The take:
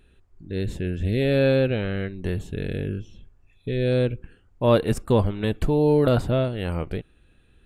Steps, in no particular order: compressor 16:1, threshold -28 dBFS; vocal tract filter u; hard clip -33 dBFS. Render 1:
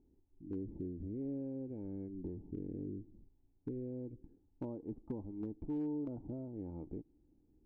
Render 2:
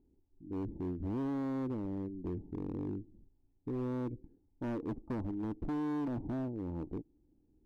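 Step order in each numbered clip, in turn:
compressor > vocal tract filter > hard clip; vocal tract filter > compressor > hard clip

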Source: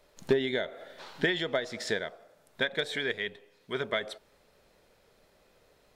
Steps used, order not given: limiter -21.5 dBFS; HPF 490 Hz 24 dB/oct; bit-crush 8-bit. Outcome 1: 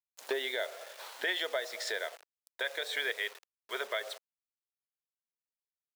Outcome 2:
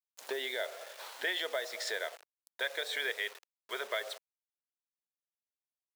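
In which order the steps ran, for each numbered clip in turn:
bit-crush > HPF > limiter; limiter > bit-crush > HPF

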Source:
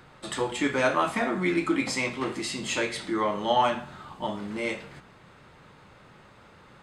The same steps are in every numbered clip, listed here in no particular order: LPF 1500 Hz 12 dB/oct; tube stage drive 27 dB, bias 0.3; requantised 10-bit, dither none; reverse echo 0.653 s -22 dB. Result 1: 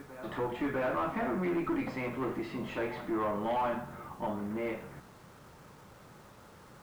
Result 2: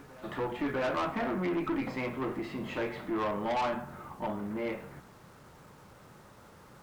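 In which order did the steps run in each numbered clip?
reverse echo > tube stage > LPF > requantised; LPF > requantised > tube stage > reverse echo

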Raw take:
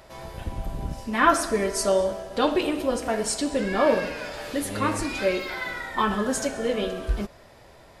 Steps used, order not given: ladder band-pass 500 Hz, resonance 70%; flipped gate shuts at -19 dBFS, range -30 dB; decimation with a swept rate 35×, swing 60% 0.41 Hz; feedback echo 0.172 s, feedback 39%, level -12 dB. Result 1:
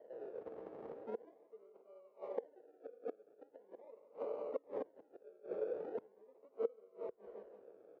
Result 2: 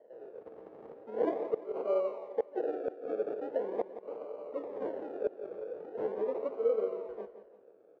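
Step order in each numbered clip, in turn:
decimation with a swept rate > feedback echo > flipped gate > ladder band-pass; decimation with a swept rate > ladder band-pass > flipped gate > feedback echo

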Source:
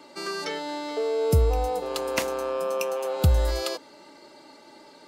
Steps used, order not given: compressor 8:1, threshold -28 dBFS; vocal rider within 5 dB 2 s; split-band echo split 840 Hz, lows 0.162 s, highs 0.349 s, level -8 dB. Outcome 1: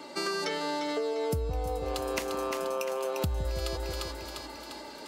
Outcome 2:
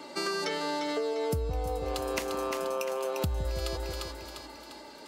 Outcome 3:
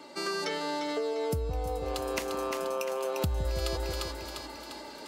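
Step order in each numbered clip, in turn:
split-band echo > vocal rider > compressor; vocal rider > split-band echo > compressor; split-band echo > compressor > vocal rider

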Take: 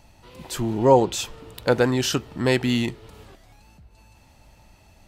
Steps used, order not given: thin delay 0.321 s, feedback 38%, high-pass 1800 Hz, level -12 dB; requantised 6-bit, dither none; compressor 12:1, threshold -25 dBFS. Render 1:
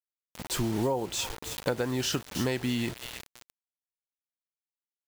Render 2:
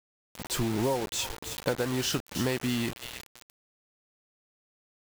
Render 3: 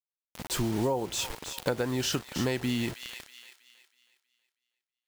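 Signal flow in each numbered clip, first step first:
thin delay > requantised > compressor; thin delay > compressor > requantised; requantised > thin delay > compressor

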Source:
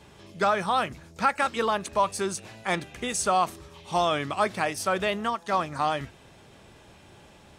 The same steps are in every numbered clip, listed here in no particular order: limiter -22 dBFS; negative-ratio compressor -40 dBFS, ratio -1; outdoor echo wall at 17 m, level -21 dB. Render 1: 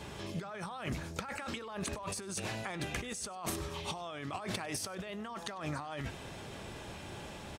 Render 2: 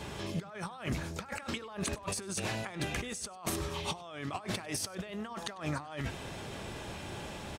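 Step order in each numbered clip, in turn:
limiter > negative-ratio compressor > outdoor echo; negative-ratio compressor > limiter > outdoor echo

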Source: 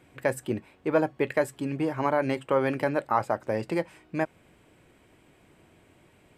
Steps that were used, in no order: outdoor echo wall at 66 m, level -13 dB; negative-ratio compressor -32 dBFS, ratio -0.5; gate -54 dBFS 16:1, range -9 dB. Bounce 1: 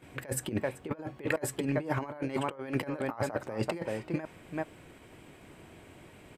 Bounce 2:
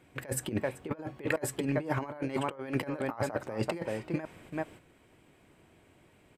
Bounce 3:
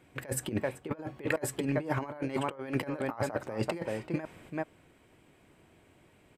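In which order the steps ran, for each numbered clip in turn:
outdoor echo > negative-ratio compressor > gate; outdoor echo > gate > negative-ratio compressor; gate > outdoor echo > negative-ratio compressor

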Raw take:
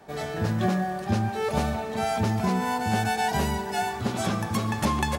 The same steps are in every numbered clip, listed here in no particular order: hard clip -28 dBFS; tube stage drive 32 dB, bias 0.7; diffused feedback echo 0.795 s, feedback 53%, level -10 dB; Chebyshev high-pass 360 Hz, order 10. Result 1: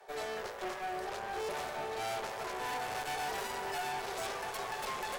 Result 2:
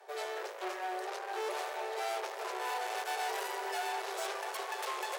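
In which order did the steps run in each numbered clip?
diffused feedback echo > hard clip > Chebyshev high-pass > tube stage; diffused feedback echo > tube stage > hard clip > Chebyshev high-pass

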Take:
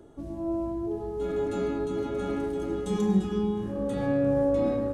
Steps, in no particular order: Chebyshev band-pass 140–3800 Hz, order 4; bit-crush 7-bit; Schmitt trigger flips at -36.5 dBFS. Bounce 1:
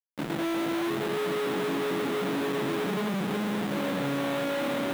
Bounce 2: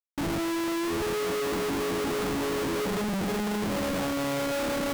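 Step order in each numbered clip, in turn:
Schmitt trigger > Chebyshev band-pass > bit-crush; Chebyshev band-pass > bit-crush > Schmitt trigger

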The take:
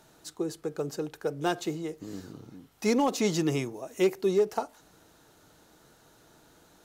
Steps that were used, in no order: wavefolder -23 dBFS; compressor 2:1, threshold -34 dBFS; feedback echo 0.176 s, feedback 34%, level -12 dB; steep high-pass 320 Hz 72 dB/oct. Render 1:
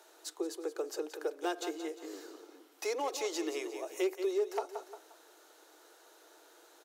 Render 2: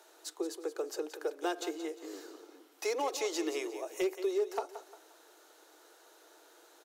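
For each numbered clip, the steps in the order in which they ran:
feedback echo > compressor > wavefolder > steep high-pass; steep high-pass > compressor > feedback echo > wavefolder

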